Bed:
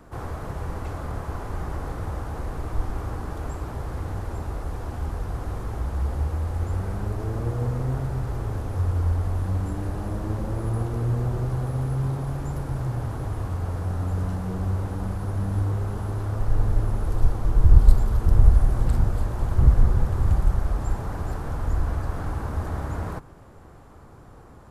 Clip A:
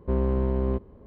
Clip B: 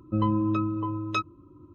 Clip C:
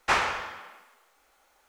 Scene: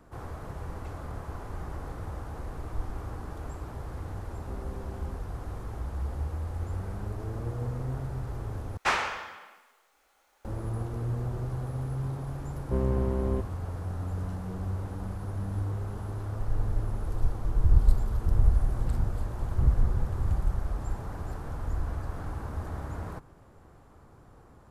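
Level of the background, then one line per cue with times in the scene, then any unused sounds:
bed -7 dB
4.39 s: add A -17.5 dB
8.77 s: replace with C -2.5 dB
12.63 s: add A -3 dB
not used: B

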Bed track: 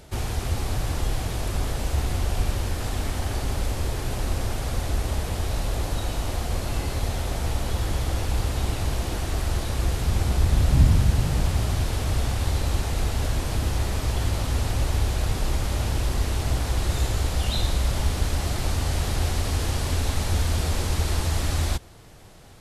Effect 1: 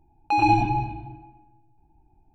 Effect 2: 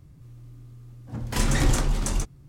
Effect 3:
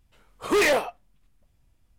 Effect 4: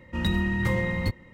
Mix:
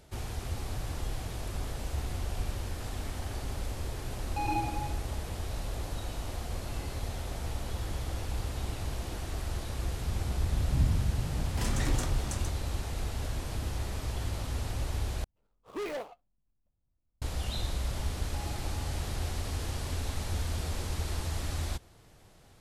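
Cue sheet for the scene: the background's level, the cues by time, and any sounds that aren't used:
bed track -9.5 dB
4.06 s: add 1 -13 dB
10.25 s: add 2 -9 dB
15.24 s: replace with 3 -15 dB + median filter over 25 samples
18.04 s: add 1 -14.5 dB + compression 4:1, threshold -34 dBFS
not used: 4

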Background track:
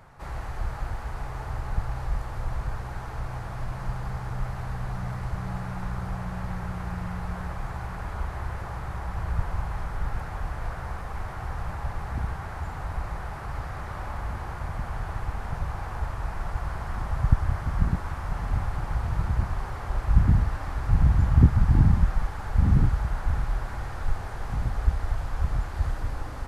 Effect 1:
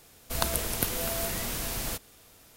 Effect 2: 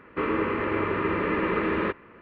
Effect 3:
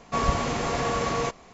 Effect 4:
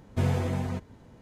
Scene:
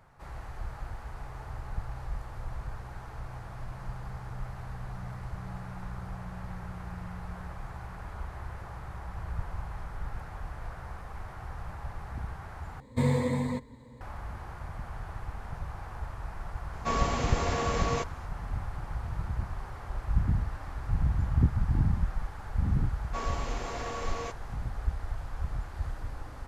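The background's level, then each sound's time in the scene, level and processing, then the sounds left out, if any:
background track -7.5 dB
12.80 s: replace with 4 -2 dB + rippled EQ curve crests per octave 1, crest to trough 15 dB
16.73 s: add 3 -4 dB
23.01 s: add 3 -10 dB + high-pass 230 Hz
not used: 1, 2

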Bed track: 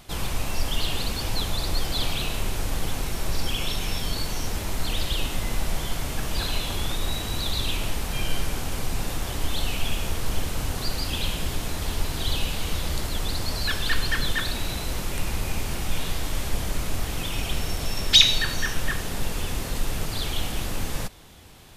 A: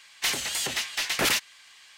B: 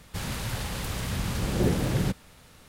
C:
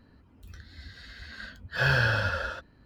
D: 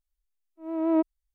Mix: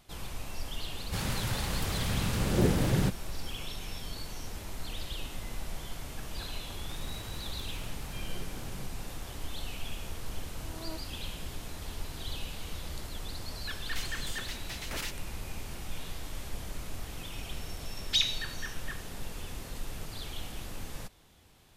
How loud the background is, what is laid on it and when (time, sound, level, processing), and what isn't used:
bed track -12 dB
0.98 s: add B -1 dB
6.75 s: add B -10 dB + compression, threshold -33 dBFS
9.95 s: add D -15 dB + high-pass 740 Hz 6 dB/octave
13.72 s: add A -14.5 dB
not used: C

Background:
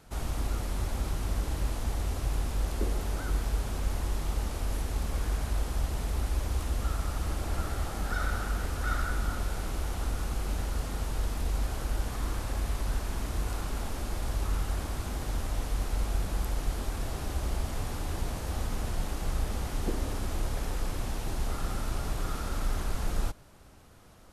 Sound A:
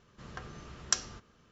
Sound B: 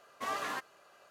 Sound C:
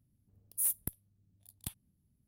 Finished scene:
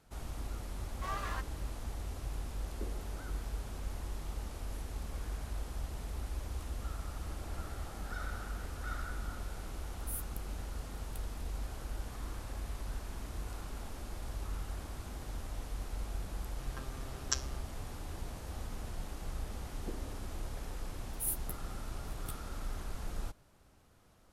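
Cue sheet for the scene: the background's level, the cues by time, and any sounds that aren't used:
background -9.5 dB
0.81 s: add B -6 dB + peaking EQ 1.2 kHz +3 dB
9.49 s: add C -11.5 dB
16.40 s: add A -3 dB + robot voice 133 Hz
20.62 s: add C -1.5 dB + three-phase chorus

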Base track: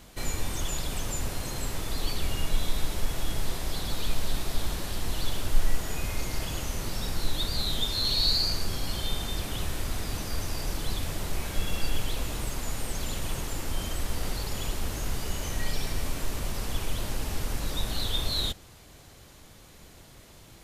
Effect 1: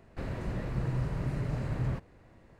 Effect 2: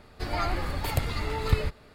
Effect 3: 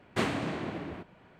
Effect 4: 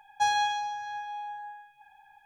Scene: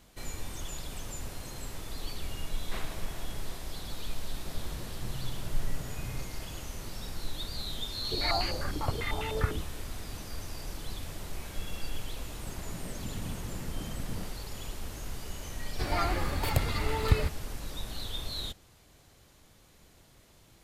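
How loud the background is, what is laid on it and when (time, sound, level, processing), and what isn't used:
base track -8 dB
2.55 s: add 3 -10 dB + peaking EQ 270 Hz -14 dB 0.86 oct
4.27 s: add 1 -10 dB
7.91 s: add 2 -6 dB + step-sequenced low-pass 10 Hz 310–2900 Hz
12.28 s: add 1 -8 dB + whisper effect
15.59 s: add 2 -0.5 dB
not used: 4

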